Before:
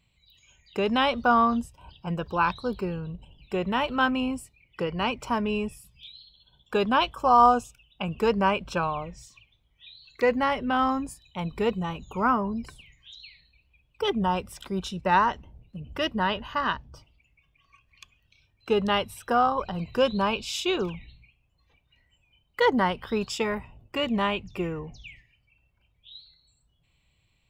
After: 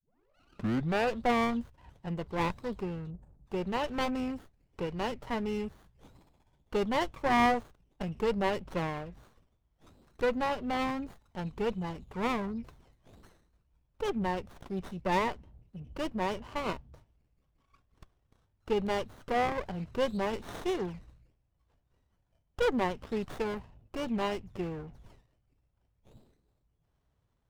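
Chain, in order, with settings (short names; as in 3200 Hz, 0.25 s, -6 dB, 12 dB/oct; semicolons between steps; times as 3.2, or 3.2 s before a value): tape start at the beginning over 1.23 s; spectral delete 3.11–3.47, 940–6100 Hz; running maximum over 17 samples; gain -5.5 dB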